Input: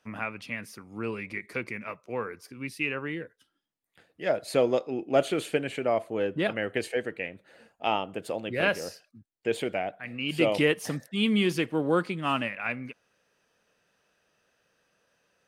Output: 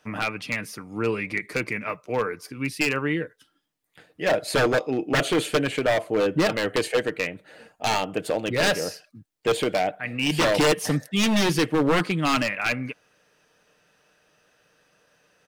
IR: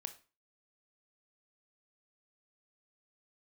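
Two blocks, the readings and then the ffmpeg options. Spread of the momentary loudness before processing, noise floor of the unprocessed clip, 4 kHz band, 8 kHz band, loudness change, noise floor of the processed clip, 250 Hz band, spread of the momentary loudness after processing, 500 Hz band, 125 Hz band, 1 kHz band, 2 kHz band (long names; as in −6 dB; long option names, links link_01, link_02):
12 LU, −76 dBFS, +7.5 dB, +11.5 dB, +5.0 dB, −68 dBFS, +5.0 dB, 9 LU, +4.0 dB, +7.0 dB, +5.5 dB, +6.0 dB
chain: -af "aeval=exprs='0.075*(abs(mod(val(0)/0.075+3,4)-2)-1)':channel_layout=same,aecho=1:1:6.6:0.3,volume=7.5dB"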